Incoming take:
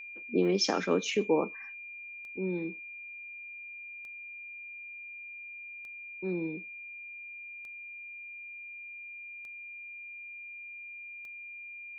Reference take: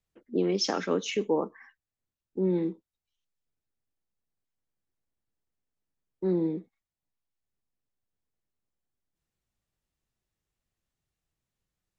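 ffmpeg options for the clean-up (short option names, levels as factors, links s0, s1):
-af "adeclick=t=4,bandreject=f=2400:w=30,asetnsamples=n=441:p=0,asendcmd='2.37 volume volume 7dB',volume=1"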